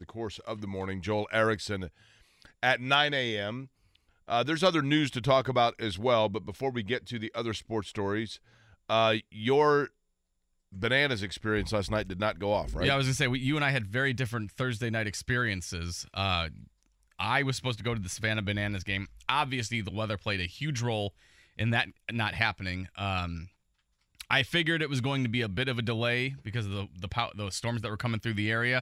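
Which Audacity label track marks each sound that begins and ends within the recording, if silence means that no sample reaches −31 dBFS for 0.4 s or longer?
2.630000	3.600000	sound
4.290000	8.320000	sound
8.900000	9.850000	sound
10.820000	16.480000	sound
17.190000	21.080000	sound
21.590000	23.410000	sound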